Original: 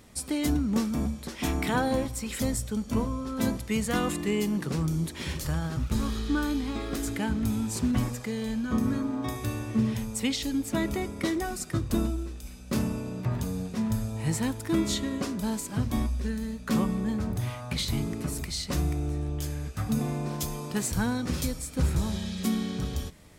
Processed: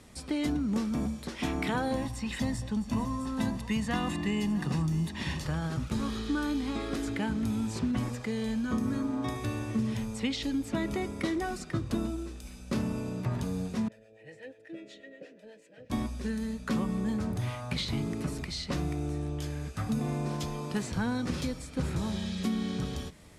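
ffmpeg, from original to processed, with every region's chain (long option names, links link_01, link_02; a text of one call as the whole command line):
ffmpeg -i in.wav -filter_complex "[0:a]asettb=1/sr,asplit=3[link_01][link_02][link_03];[link_01]atrim=end=1.964[link_04];[link_02]atrim=start=1.96:end=5.44,asetpts=PTS-STARTPTS,afade=type=in:duration=0.004:curve=qsin,afade=type=out:start_time=3.476:duration=0.004:curve=qsin,aecho=1:1:1.1:0.54,atrim=end_sample=153468,aecho=1:1:656:0.133,atrim=end_sample=153468[link_05];[link_03]atrim=start=5.436[link_06];[link_04][link_05]acrossfade=duration=0.004:curve1=hsin:curve2=qsin[link_07];[link_07][link_06]acrossfade=duration=0.004:curve1=qsin:curve2=hsin,asettb=1/sr,asplit=3[link_08][link_09][link_10];[link_08]atrim=end=13.884[link_11];[link_09]atrim=start=13.88:end=15.9,asetpts=PTS-STARTPTS,afade=type=in:duration=0.004:curve=qsin,afade=type=out:start_time=2.016:duration=0.004:curve=qsin,aecho=1:1:6.4:0.45,atrim=end_sample=89082,acrossover=split=560[link_12][link_13];[link_12]aeval=exprs='val(0)*(1-0.7/2+0.7/2*cos(2*PI*8.2*n/s))':channel_layout=same[link_14];[link_13]aeval=exprs='val(0)*(1-0.7/2-0.7/2*cos(2*PI*8.2*n/s))':channel_layout=same[link_15];[link_14][link_15]amix=inputs=2:normalize=0,asplit=3[link_16][link_17][link_18];[link_16]bandpass=frequency=530:width_type=q:width=8,volume=0dB[link_19];[link_17]bandpass=frequency=1840:width_type=q:width=8,volume=-6dB[link_20];[link_18]bandpass=frequency=2480:width_type=q:width=8,volume=-9dB[link_21];[link_19][link_20][link_21]amix=inputs=3:normalize=0[link_22];[link_10]atrim=start=15.896[link_23];[link_11][link_22]acrossfade=duration=0.004:curve1=hsin:curve2=qsin[link_24];[link_24][link_23]acrossfade=duration=0.004:curve1=qsin:curve2=hsin,lowpass=frequency=12000:width=0.5412,lowpass=frequency=12000:width=1.3066,acrossover=split=100|4900[link_25][link_26][link_27];[link_25]acompressor=threshold=-43dB:ratio=4[link_28];[link_26]acompressor=threshold=-27dB:ratio=4[link_29];[link_27]acompressor=threshold=-53dB:ratio=4[link_30];[link_28][link_29][link_30]amix=inputs=3:normalize=0" out.wav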